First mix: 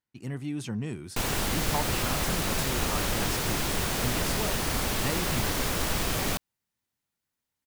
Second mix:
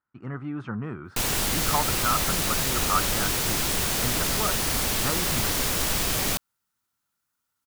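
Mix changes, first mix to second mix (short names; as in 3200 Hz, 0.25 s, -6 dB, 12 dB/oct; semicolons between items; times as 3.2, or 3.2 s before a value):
speech: add synth low-pass 1300 Hz, resonance Q 7; master: add high shelf 3000 Hz +7 dB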